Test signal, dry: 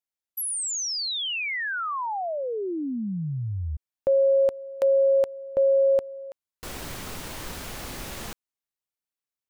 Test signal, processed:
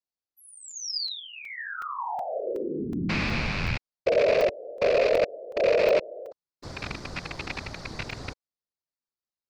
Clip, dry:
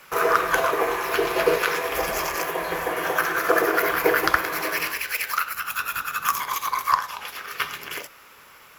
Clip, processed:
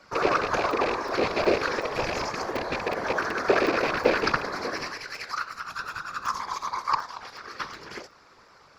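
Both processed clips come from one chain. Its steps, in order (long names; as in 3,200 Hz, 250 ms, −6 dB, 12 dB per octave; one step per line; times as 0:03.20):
loose part that buzzes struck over −37 dBFS, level −7 dBFS
high shelf with overshoot 3,700 Hz +7.5 dB, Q 3
random phases in short frames
head-to-tape spacing loss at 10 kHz 30 dB
regular buffer underruns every 0.37 s, samples 128, zero, from 0:00.71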